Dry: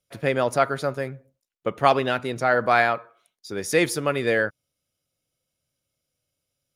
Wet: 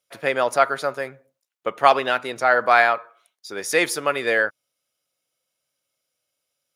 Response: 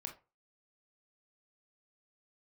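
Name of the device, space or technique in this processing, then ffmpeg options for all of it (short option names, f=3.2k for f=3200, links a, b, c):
filter by subtraction: -filter_complex "[0:a]asplit=2[a][b];[b]lowpass=960,volume=-1[c];[a][c]amix=inputs=2:normalize=0,volume=2.5dB"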